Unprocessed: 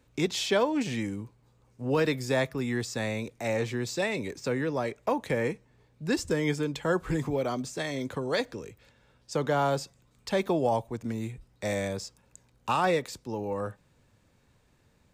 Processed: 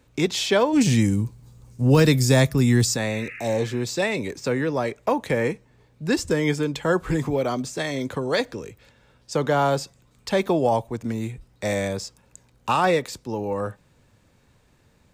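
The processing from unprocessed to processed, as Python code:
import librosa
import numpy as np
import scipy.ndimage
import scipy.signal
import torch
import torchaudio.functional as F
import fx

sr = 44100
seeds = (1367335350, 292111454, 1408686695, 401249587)

y = fx.bass_treble(x, sr, bass_db=12, treble_db=11, at=(0.72, 2.95), fade=0.02)
y = fx.spec_repair(y, sr, seeds[0], start_s=3.15, length_s=0.64, low_hz=1200.0, high_hz=2900.0, source='both')
y = y * 10.0 ** (5.5 / 20.0)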